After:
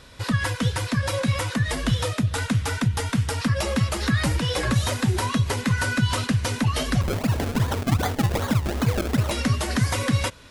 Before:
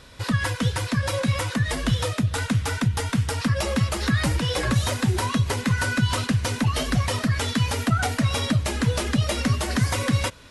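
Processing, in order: 7.01–9.31 decimation with a swept rate 32×, swing 100% 2.6 Hz

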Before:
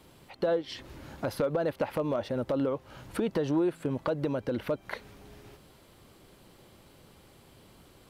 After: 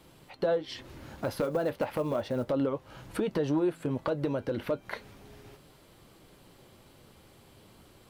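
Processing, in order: 0.98–2.5 short-mantissa float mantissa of 4-bit; flange 0.33 Hz, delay 5.9 ms, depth 4.2 ms, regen -64%; gain +4 dB

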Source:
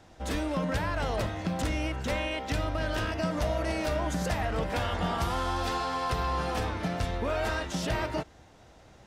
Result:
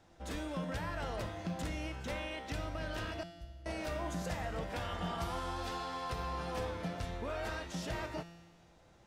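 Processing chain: 3.23–3.66 passive tone stack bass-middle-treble 10-0-1; resonator 170 Hz, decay 1.4 s, mix 80%; gain +4 dB

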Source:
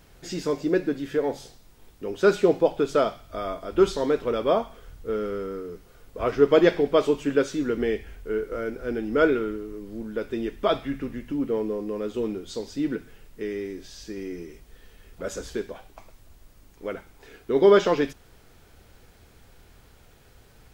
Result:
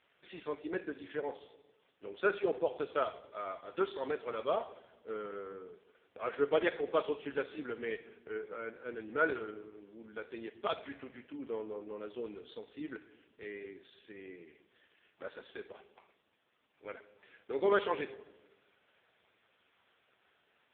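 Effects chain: HPF 1300 Hz 6 dB/oct; on a send at -16 dB: reverb RT60 1.1 s, pre-delay 58 ms; on the sum: careless resampling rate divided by 2×, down none, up hold; gain -2.5 dB; AMR-NB 4.75 kbps 8000 Hz

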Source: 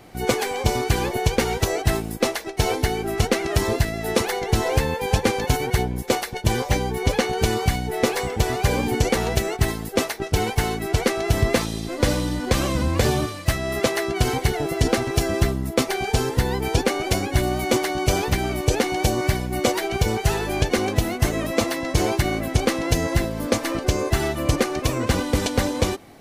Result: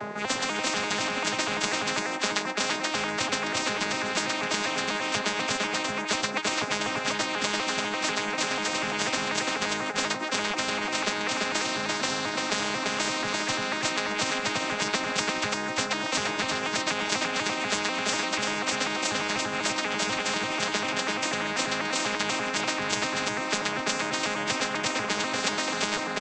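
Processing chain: arpeggiated vocoder major triad, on G#3, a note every 0.245 s; reverse; upward compressor, threshold -23 dBFS; reverse; resonant high shelf 2100 Hz -7.5 dB, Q 1.5; on a send: echo 0.341 s -4.5 dB; on the sum: spectral compressor 10:1; gain +3 dB

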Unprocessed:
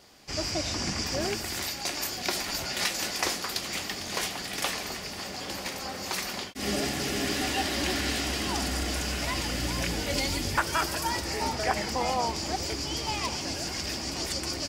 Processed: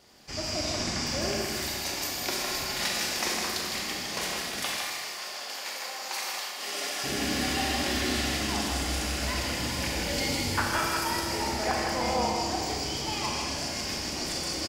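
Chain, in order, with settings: 4.61–7.04 HPF 670 Hz 12 dB/oct; echo 0.158 s -5.5 dB; Schroeder reverb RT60 1.5 s, combs from 29 ms, DRR 0 dB; gain -3.5 dB

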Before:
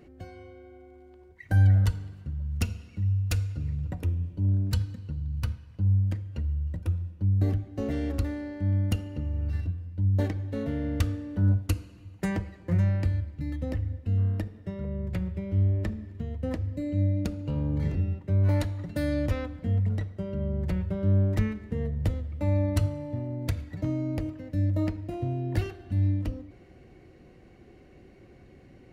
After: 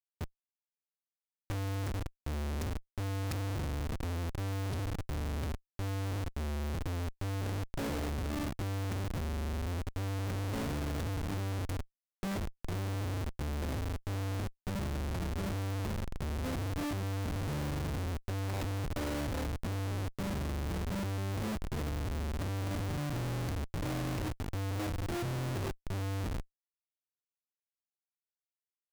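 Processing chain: pre-echo 83 ms -20.5 dB; Schmitt trigger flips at -34.5 dBFS; gain -7 dB

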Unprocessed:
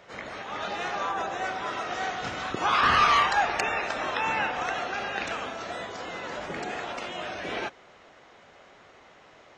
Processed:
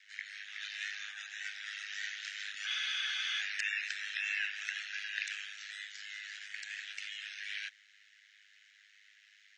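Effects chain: ring modulator 51 Hz; elliptic high-pass 1700 Hz, stop band 40 dB; spectral freeze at 2.69, 0.71 s

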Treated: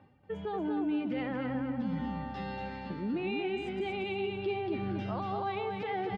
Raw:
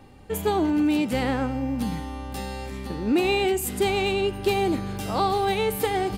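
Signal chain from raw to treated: per-bin expansion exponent 1.5; LPF 3100 Hz 24 dB/oct; on a send at -20 dB: reverb, pre-delay 92 ms; on the sum: compressor, threshold -26 dBFS, peak gain reduction 8 dB; HPF 150 Hz 12 dB/oct; reverse; upward compressor, threshold -31 dBFS; reverse; limiter -28.5 dBFS, peak gain reduction 10 dB; feedback echo 0.235 s, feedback 38%, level -4 dB

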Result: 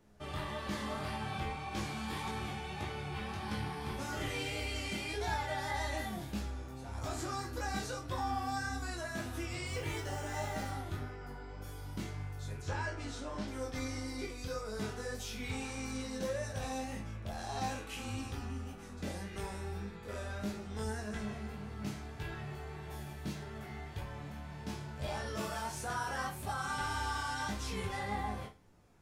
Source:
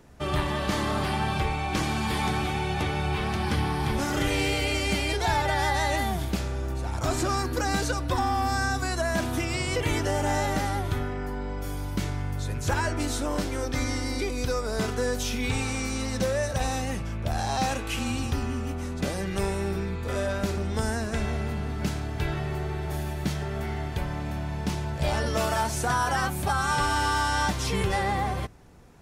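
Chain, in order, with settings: chorus 1.7 Hz, delay 18 ms, depth 5.2 ms; 9.65–10.72 modulation noise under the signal 27 dB; 12.62–13.48 LPF 5900 Hz 12 dB/oct; resonator bank C#2 major, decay 0.29 s; gain +2.5 dB

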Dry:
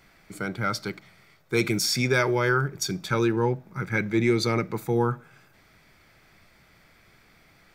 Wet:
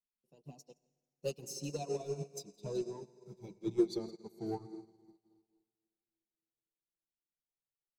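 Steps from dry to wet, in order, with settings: speed glide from 128% -> 66%; Chebyshev band-stop 740–3800 Hz, order 2; in parallel at -6 dB: soft clip -26.5 dBFS, distortion -9 dB; on the sum: echo 0.167 s -10 dB; reverb removal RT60 1.2 s; flange 0.97 Hz, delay 4.2 ms, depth 2.8 ms, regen -4%; on a send at -7.5 dB: speaker cabinet 140–8900 Hz, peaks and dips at 190 Hz +7 dB, 340 Hz +6 dB, 2200 Hz +7 dB, 3300 Hz -9 dB + reverb RT60 3.9 s, pre-delay 78 ms; on the sum: upward expander 2.5:1, over -46 dBFS; gain -4.5 dB

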